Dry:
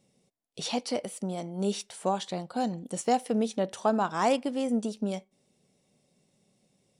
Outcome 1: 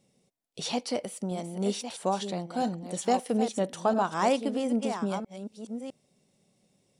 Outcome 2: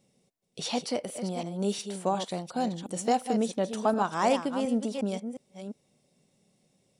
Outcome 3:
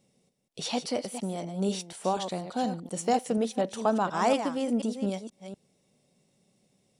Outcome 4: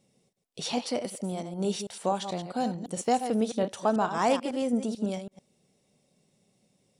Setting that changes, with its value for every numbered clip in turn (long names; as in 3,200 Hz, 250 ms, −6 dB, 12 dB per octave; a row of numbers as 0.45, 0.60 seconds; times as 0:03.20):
delay that plays each chunk backwards, delay time: 656, 358, 241, 110 milliseconds